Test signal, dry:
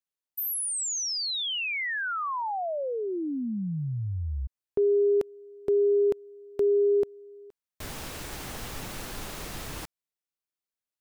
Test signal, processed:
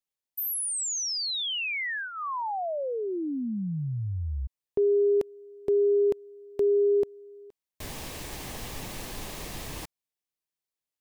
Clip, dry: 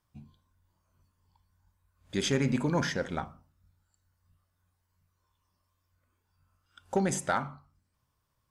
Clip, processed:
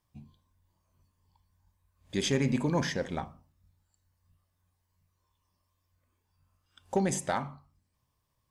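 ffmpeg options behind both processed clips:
ffmpeg -i in.wav -af "equalizer=frequency=1400:width=6.4:gain=-10.5" out.wav

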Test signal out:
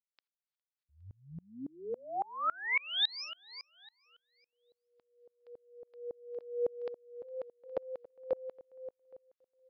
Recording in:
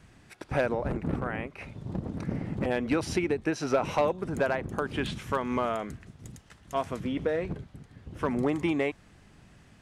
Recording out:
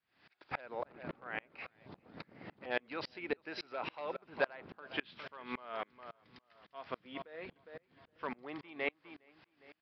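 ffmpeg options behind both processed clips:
ffmpeg -i in.wav -filter_complex "[0:a]asplit=2[link_01][link_02];[link_02]adelay=409,lowpass=frequency=3500:poles=1,volume=-14dB,asplit=2[link_03][link_04];[link_04]adelay=409,lowpass=frequency=3500:poles=1,volume=0.39,asplit=2[link_05][link_06];[link_06]adelay=409,lowpass=frequency=3500:poles=1,volume=0.39,asplit=2[link_07][link_08];[link_08]adelay=409,lowpass=frequency=3500:poles=1,volume=0.39[link_09];[link_03][link_05][link_07][link_09]amix=inputs=4:normalize=0[link_10];[link_01][link_10]amix=inputs=2:normalize=0,aresample=11025,aresample=44100,highpass=frequency=1100:poles=1,aeval=exprs='val(0)*pow(10,-31*if(lt(mod(-3.6*n/s,1),2*abs(-3.6)/1000),1-mod(-3.6*n/s,1)/(2*abs(-3.6)/1000),(mod(-3.6*n/s,1)-2*abs(-3.6)/1000)/(1-2*abs(-3.6)/1000))/20)':channel_layout=same,volume=3.5dB" out.wav

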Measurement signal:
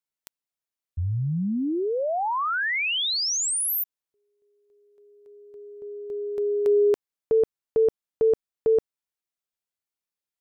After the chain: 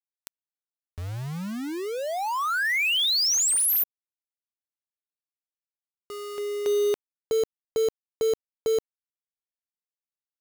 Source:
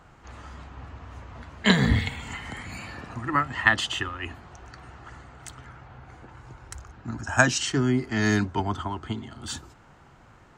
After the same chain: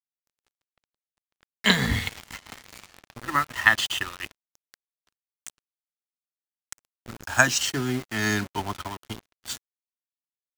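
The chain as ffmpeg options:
ffmpeg -i in.wav -filter_complex "[0:a]asplit=2[link_01][link_02];[link_02]acrusher=bits=4:mix=0:aa=0.000001,volume=-7dB[link_03];[link_01][link_03]amix=inputs=2:normalize=0,tiltshelf=frequency=970:gain=-4,aeval=exprs='sgn(val(0))*max(abs(val(0))-0.0178,0)':channel_layout=same,volume=-3dB" out.wav

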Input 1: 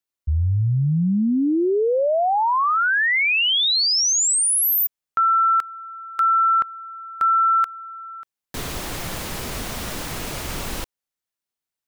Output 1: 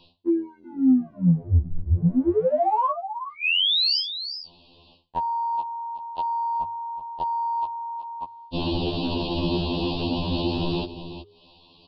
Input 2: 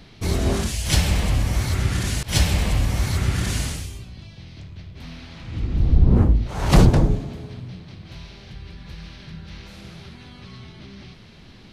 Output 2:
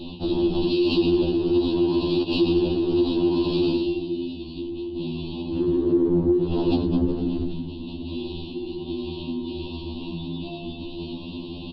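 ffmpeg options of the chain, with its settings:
ffmpeg -i in.wav -filter_complex "[0:a]asuperstop=centerf=2100:order=20:qfactor=1.4,asplit=2[link_01][link_02];[link_02]aecho=0:1:373:0.106[link_03];[link_01][link_03]amix=inputs=2:normalize=0,aresample=11025,aresample=44100,afreqshift=-410,lowshelf=frequency=190:gain=5.5,areverse,acompressor=mode=upward:threshold=-34dB:ratio=2.5:attack=27:release=97:knee=2.83:detection=peak,areverse,bandreject=frequency=50:width_type=h:width=6,bandreject=frequency=100:width_type=h:width=6,bandreject=frequency=150:width_type=h:width=6,acompressor=threshold=-25dB:ratio=6:attack=1.7:release=24:knee=1:detection=peak,afftfilt=real='re*2*eq(mod(b,4),0)':imag='im*2*eq(mod(b,4),0)':win_size=2048:overlap=0.75,volume=7dB" out.wav

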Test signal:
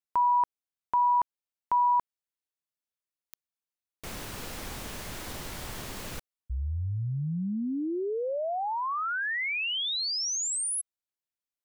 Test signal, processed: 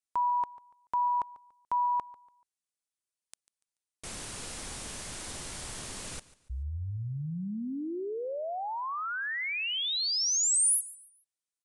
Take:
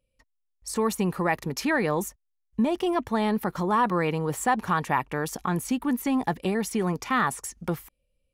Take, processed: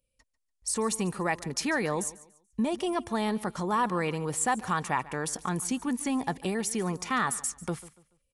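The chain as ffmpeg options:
ffmpeg -i in.wav -af "aresample=22050,aresample=44100,aemphasis=mode=production:type=50fm,aecho=1:1:144|288|432:0.112|0.0348|0.0108,volume=-4dB" out.wav

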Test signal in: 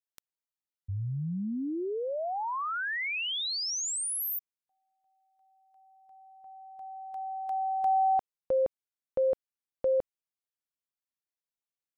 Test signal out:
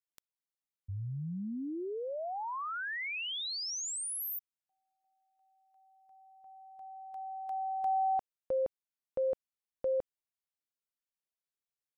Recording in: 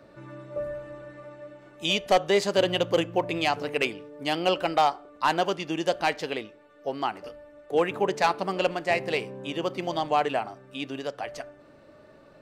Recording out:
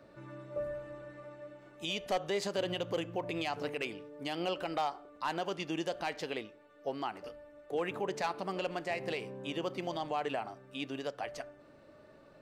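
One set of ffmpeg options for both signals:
ffmpeg -i in.wav -af "alimiter=limit=-20dB:level=0:latency=1:release=81,volume=-5dB" out.wav

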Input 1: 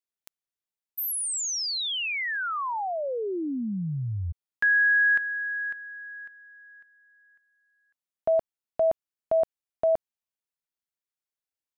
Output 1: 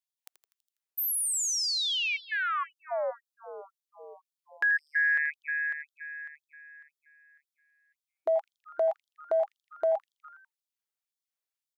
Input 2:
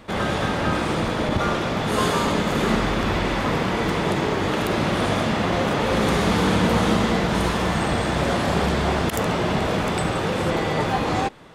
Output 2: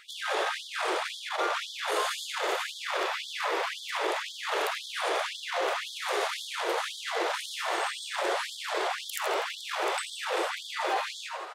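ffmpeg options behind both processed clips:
ffmpeg -i in.wav -filter_complex "[0:a]asplit=7[link_01][link_02][link_03][link_04][link_05][link_06][link_07];[link_02]adelay=82,afreqshift=150,volume=-13.5dB[link_08];[link_03]adelay=164,afreqshift=300,volume=-18.1dB[link_09];[link_04]adelay=246,afreqshift=450,volume=-22.7dB[link_10];[link_05]adelay=328,afreqshift=600,volume=-27.2dB[link_11];[link_06]adelay=410,afreqshift=750,volume=-31.8dB[link_12];[link_07]adelay=492,afreqshift=900,volume=-36.4dB[link_13];[link_01][link_08][link_09][link_10][link_11][link_12][link_13]amix=inputs=7:normalize=0,acompressor=threshold=-22dB:ratio=6:attack=1.1:release=40:knee=1:detection=peak,afftfilt=real='re*gte(b*sr/1024,310*pow(3200/310,0.5+0.5*sin(2*PI*1.9*pts/sr)))':imag='im*gte(b*sr/1024,310*pow(3200/310,0.5+0.5*sin(2*PI*1.9*pts/sr)))':win_size=1024:overlap=0.75" out.wav

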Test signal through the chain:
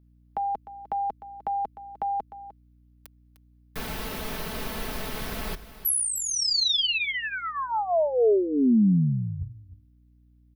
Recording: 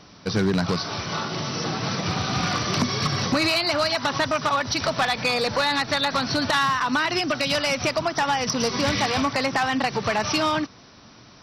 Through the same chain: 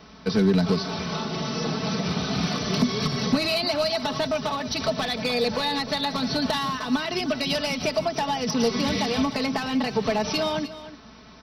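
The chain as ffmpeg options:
ffmpeg -i in.wav -filter_complex "[0:a]equalizer=frequency=7400:width=1.4:gain=-10,bandreject=frequency=50:width_type=h:width=6,bandreject=frequency=100:width_type=h:width=6,aecho=1:1:4.6:0.62,acrossover=split=220|740|2900[link_01][link_02][link_03][link_04];[link_03]acompressor=threshold=-37dB:ratio=6[link_05];[link_01][link_02][link_05][link_04]amix=inputs=4:normalize=0,aeval=exprs='val(0)+0.00141*(sin(2*PI*60*n/s)+sin(2*PI*2*60*n/s)/2+sin(2*PI*3*60*n/s)/3+sin(2*PI*4*60*n/s)/4+sin(2*PI*5*60*n/s)/5)':channel_layout=same,aecho=1:1:303:0.188" out.wav

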